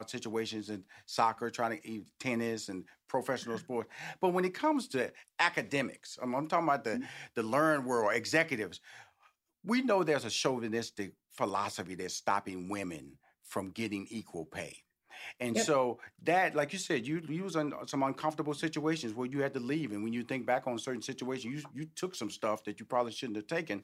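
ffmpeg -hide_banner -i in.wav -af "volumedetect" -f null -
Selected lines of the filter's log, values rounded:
mean_volume: -34.6 dB
max_volume: -12.3 dB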